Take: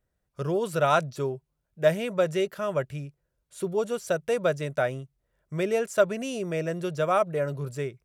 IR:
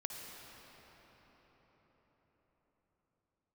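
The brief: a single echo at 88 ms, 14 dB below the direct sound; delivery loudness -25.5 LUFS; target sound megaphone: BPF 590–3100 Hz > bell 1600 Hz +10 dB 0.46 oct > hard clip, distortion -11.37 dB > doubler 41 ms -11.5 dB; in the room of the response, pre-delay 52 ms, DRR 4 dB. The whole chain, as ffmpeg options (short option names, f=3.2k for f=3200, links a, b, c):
-filter_complex "[0:a]aecho=1:1:88:0.2,asplit=2[a][b];[1:a]atrim=start_sample=2205,adelay=52[c];[b][c]afir=irnorm=-1:irlink=0,volume=-3.5dB[d];[a][d]amix=inputs=2:normalize=0,highpass=590,lowpass=3.1k,equalizer=f=1.6k:t=o:w=0.46:g=10,asoftclip=type=hard:threshold=-19dB,asplit=2[e][f];[f]adelay=41,volume=-11.5dB[g];[e][g]amix=inputs=2:normalize=0,volume=3dB"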